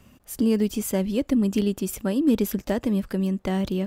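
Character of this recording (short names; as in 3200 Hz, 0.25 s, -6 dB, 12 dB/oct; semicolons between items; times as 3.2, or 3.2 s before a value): noise floor -56 dBFS; spectral tilt -6.0 dB/oct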